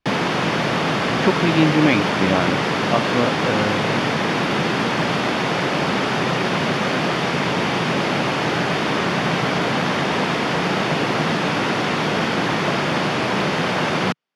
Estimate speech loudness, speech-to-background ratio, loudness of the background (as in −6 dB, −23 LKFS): −21.5 LKFS, −1.5 dB, −20.0 LKFS